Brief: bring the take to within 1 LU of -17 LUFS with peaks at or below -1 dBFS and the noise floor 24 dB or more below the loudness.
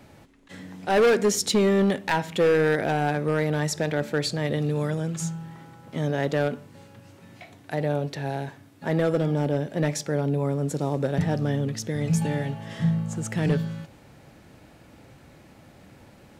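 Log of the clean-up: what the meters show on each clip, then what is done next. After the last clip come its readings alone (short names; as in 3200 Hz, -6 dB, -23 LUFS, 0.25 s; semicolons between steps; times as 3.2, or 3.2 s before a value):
clipped 1.3%; flat tops at -15.5 dBFS; loudness -25.5 LUFS; peak -15.5 dBFS; loudness target -17.0 LUFS
-> clip repair -15.5 dBFS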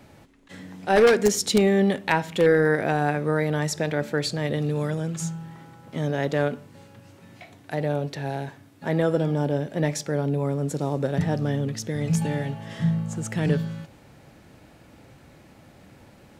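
clipped 0.0%; loudness -24.5 LUFS; peak -6.5 dBFS; loudness target -17.0 LUFS
-> gain +7.5 dB; limiter -1 dBFS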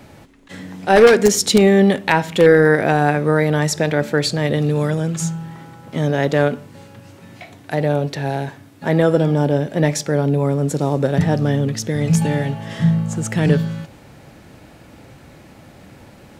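loudness -17.0 LUFS; peak -1.0 dBFS; noise floor -44 dBFS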